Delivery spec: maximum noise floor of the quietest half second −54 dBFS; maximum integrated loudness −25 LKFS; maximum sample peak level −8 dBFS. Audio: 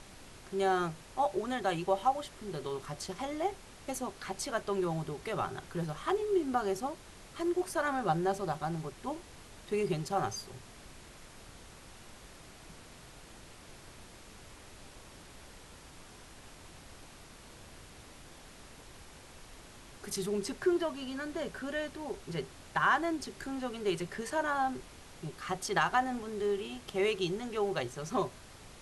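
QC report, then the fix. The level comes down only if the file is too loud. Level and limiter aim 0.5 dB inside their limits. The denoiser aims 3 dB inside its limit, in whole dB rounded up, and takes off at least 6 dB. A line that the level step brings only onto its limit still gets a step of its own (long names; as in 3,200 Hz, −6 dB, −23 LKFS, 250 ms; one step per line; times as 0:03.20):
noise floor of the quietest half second −52 dBFS: out of spec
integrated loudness −34.5 LKFS: in spec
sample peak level −15.5 dBFS: in spec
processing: broadband denoise 6 dB, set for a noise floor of −52 dBFS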